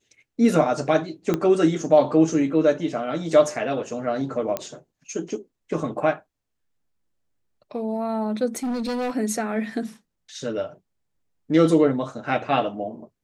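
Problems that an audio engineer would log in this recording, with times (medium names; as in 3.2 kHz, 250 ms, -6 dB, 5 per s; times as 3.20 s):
1.34 s: pop -10 dBFS
4.57 s: pop -11 dBFS
8.56–9.11 s: clipped -23.5 dBFS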